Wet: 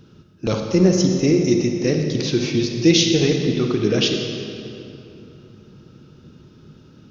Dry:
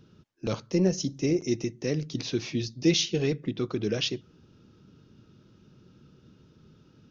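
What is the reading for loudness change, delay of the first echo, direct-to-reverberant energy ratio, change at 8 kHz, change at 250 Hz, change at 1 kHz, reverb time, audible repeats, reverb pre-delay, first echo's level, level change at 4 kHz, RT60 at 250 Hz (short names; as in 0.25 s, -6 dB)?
+10.0 dB, none, 3.0 dB, n/a, +10.5 dB, +10.0 dB, 3.0 s, none, 34 ms, none, +9.5 dB, 3.1 s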